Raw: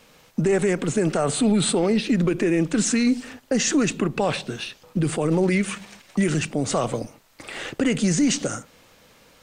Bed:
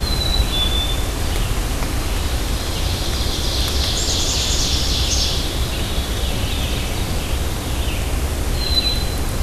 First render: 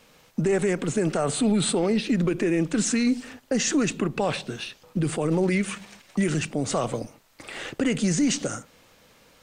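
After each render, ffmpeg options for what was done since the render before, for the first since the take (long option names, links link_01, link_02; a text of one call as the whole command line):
ffmpeg -i in.wav -af "volume=-2.5dB" out.wav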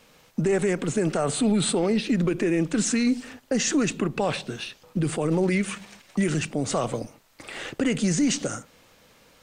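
ffmpeg -i in.wav -af anull out.wav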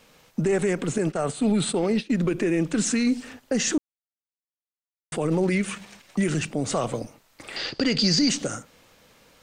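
ffmpeg -i in.wav -filter_complex "[0:a]asettb=1/sr,asplit=3[link_01][link_02][link_03];[link_01]atrim=end=0.984[link_04];[link_02]atrim=start=0.98:end=2.26,asetpts=PTS-STARTPTS,afade=type=in:duration=0.004:curve=qsin,afade=type=out:start_time=1.276:duration=0.004:curve=qsin,agate=range=-33dB:threshold=-23dB:ratio=3:release=100:detection=peak[link_05];[link_03]atrim=start=2.256[link_06];[link_04][link_05]acrossfade=duration=0.004:curve1=hsin:curve2=qsin[link_07];[link_07][link_06]acrossfade=duration=0.004:curve1=qsin:curve2=hsin,asettb=1/sr,asplit=3[link_08][link_09][link_10];[link_08]atrim=end=7.564[link_11];[link_09]atrim=start=7.56:end=8.29,asetpts=PTS-STARTPTS,afade=type=in:duration=0.004:curve=qsin,afade=type=out:start_time=0.726:duration=0.004:curve=qsin,lowpass=frequency=4700:width_type=q:width=16[link_12];[link_10]atrim=start=8.286[link_13];[link_11][link_12]acrossfade=duration=0.004:curve1=hsin:curve2=qsin[link_14];[link_14][link_13]acrossfade=duration=0.004:curve1=qsin:curve2=hsin,asplit=3[link_15][link_16][link_17];[link_15]atrim=end=3.78,asetpts=PTS-STARTPTS,afade=type=out:start_time=3.776:duration=0.004:curve=hsin[link_18];[link_16]atrim=start=3.78:end=5.12,asetpts=PTS-STARTPTS,volume=0[link_19];[link_17]atrim=start=5.12,asetpts=PTS-STARTPTS,afade=type=in:duration=0.004:curve=hsin[link_20];[link_18][link_19][link_20]concat=n=3:v=0:a=1" out.wav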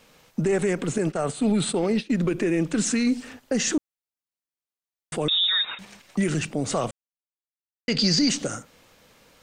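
ffmpeg -i in.wav -filter_complex "[0:a]asettb=1/sr,asplit=3[link_01][link_02][link_03];[link_01]atrim=end=5.284[link_04];[link_02]atrim=start=5.28:end=5.79,asetpts=PTS-STARTPTS,afade=type=in:duration=0.004:curve=qsin,afade=type=out:start_time=0.506:duration=0.004:curve=qsin,lowpass=frequency=3300:width_type=q:width=0.5098,lowpass=frequency=3300:width_type=q:width=0.6013,lowpass=frequency=3300:width_type=q:width=0.9,lowpass=frequency=3300:width_type=q:width=2.563,afreqshift=-3900[link_05];[link_03]atrim=start=5.786[link_06];[link_04][link_05]acrossfade=duration=0.004:curve1=hsin:curve2=qsin[link_07];[link_07][link_06]acrossfade=duration=0.004:curve1=qsin:curve2=hsin,asplit=3[link_08][link_09][link_10];[link_08]atrim=end=6.91,asetpts=PTS-STARTPTS,afade=type=out:start_time=6.906:duration=0.004:curve=hsin[link_11];[link_09]atrim=start=6.91:end=7.88,asetpts=PTS-STARTPTS,volume=0[link_12];[link_10]atrim=start=7.88,asetpts=PTS-STARTPTS,afade=type=in:duration=0.004:curve=hsin[link_13];[link_11][link_12][link_13]concat=n=3:v=0:a=1" out.wav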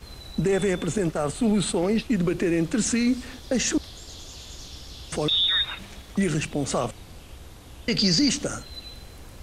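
ffmpeg -i in.wav -i bed.wav -filter_complex "[1:a]volume=-22.5dB[link_01];[0:a][link_01]amix=inputs=2:normalize=0" out.wav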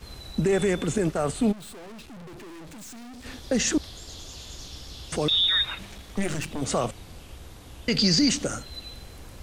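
ffmpeg -i in.wav -filter_complex "[0:a]asplit=3[link_01][link_02][link_03];[link_01]afade=type=out:start_time=1.51:duration=0.02[link_04];[link_02]aeval=exprs='(tanh(126*val(0)+0.35)-tanh(0.35))/126':channel_layout=same,afade=type=in:start_time=1.51:duration=0.02,afade=type=out:start_time=3.24:duration=0.02[link_05];[link_03]afade=type=in:start_time=3.24:duration=0.02[link_06];[link_04][link_05][link_06]amix=inputs=3:normalize=0,asettb=1/sr,asplit=3[link_07][link_08][link_09];[link_07]atrim=end=5.864[link_10];[link_08]atrim=start=5.86:end=6.62,asetpts=PTS-STARTPTS,afade=type=in:duration=0.004:curve=qsin,afade=type=out:start_time=0.756:duration=0.004:curve=qsin,aeval=exprs='clip(val(0),-1,0.0133)':channel_layout=same[link_11];[link_09]atrim=start=6.616[link_12];[link_10][link_11]acrossfade=duration=0.004:curve1=hsin:curve2=qsin[link_13];[link_13][link_12]acrossfade=duration=0.004:curve1=qsin:curve2=hsin" out.wav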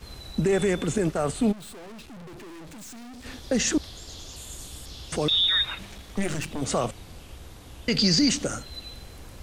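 ffmpeg -i in.wav -filter_complex "[0:a]asettb=1/sr,asplit=3[link_01][link_02][link_03];[link_01]atrim=end=4.364[link_04];[link_02]atrim=start=4.36:end=4.86,asetpts=PTS-STARTPTS,afade=type=in:duration=0.004:curve=qsin,afade=type=out:start_time=0.496:duration=0.004:curve=qsin,highshelf=frequency=6800:width_type=q:width=3:gain=7.5[link_05];[link_03]atrim=start=4.856[link_06];[link_04][link_05]acrossfade=duration=0.004:curve1=hsin:curve2=qsin[link_07];[link_07][link_06]acrossfade=duration=0.004:curve1=qsin:curve2=hsin" out.wav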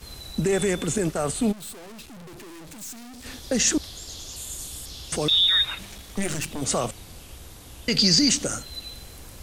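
ffmpeg -i in.wav -af "aemphasis=mode=production:type=cd" out.wav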